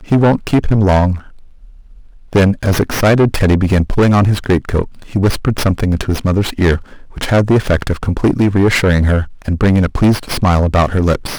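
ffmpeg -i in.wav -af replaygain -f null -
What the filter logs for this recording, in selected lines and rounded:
track_gain = -4.9 dB
track_peak = 0.522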